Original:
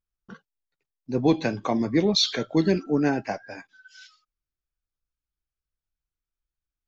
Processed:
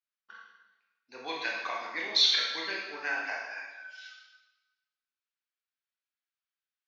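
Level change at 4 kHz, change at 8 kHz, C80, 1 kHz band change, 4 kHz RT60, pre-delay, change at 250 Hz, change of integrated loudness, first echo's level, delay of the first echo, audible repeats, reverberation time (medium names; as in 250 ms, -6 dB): +1.0 dB, no reading, 4.0 dB, -5.5 dB, 1.0 s, 20 ms, -26.5 dB, -5.0 dB, no echo, no echo, no echo, 1.1 s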